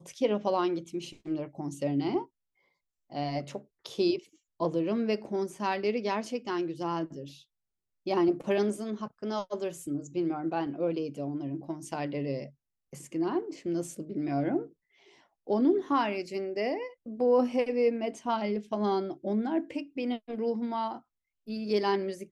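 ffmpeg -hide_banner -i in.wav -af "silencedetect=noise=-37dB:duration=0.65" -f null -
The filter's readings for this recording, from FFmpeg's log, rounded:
silence_start: 2.23
silence_end: 3.12 | silence_duration: 0.89
silence_start: 7.27
silence_end: 8.07 | silence_duration: 0.80
silence_start: 14.64
silence_end: 15.49 | silence_duration: 0.85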